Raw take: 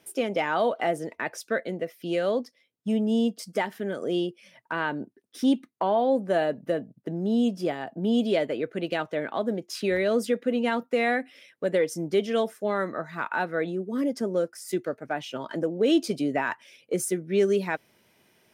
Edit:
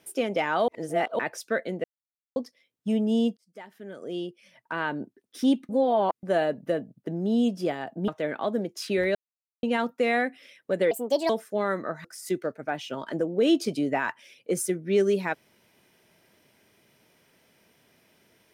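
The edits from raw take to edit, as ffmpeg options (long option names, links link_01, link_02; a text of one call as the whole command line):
ffmpeg -i in.wav -filter_complex "[0:a]asplit=14[link_01][link_02][link_03][link_04][link_05][link_06][link_07][link_08][link_09][link_10][link_11][link_12][link_13][link_14];[link_01]atrim=end=0.682[link_15];[link_02]atrim=start=0.678:end=1.192,asetpts=PTS-STARTPTS,areverse[link_16];[link_03]atrim=start=1.188:end=1.84,asetpts=PTS-STARTPTS,afade=type=out:start_time=0.648:duration=0.004:curve=hsin[link_17];[link_04]atrim=start=1.84:end=2.36,asetpts=PTS-STARTPTS,volume=0[link_18];[link_05]atrim=start=2.36:end=3.37,asetpts=PTS-STARTPTS,afade=type=in:duration=0.004:curve=hsin,afade=type=out:start_time=1.006:duration=0.004:curve=hsin[link_19];[link_06]atrim=start=3.37:end=5.692,asetpts=PTS-STARTPTS,afade=type=in:duration=1.65[link_20];[link_07]atrim=start=5.688:end=6.232,asetpts=PTS-STARTPTS,areverse[link_21];[link_08]atrim=start=6.228:end=8.082[link_22];[link_09]atrim=start=9.008:end=10.08,asetpts=PTS-STARTPTS,afade=type=out:start_time=1.068:duration=0.004:curve=hsin[link_23];[link_10]atrim=start=10.08:end=10.56,asetpts=PTS-STARTPTS,volume=0[link_24];[link_11]atrim=start=10.56:end=11.844,asetpts=PTS-STARTPTS,afade=type=in:duration=0.004:curve=hsin[link_25];[link_12]atrim=start=11.84:end=12.39,asetpts=PTS-STARTPTS,asetrate=63063,aresample=44100[link_26];[link_13]atrim=start=12.386:end=13.142[link_27];[link_14]atrim=start=14.468[link_28];[link_15][link_16]acrossfade=duration=0.004:curve1=hsin:curve2=hsin[link_29];[link_17][link_18][link_19][link_20]concat=n=4:v=0:a=1[link_30];[link_29][link_30]acrossfade=duration=0.004:curve1=hsin:curve2=hsin[link_31];[link_31][link_21]acrossfade=duration=0.004:curve1=hsin:curve2=hsin[link_32];[link_32][link_22]acrossfade=duration=0.004:curve1=hsin:curve2=hsin[link_33];[link_23][link_24][link_25]concat=n=3:v=0:a=1[link_34];[link_33][link_34]acrossfade=duration=0.004:curve1=hsin:curve2=hsin[link_35];[link_35][link_26]acrossfade=duration=0.004:curve1=hsin:curve2=hsin[link_36];[link_36][link_27]acrossfade=duration=0.004:curve1=hsin:curve2=hsin[link_37];[link_37][link_28]acrossfade=duration=0.004:curve1=hsin:curve2=hsin" out.wav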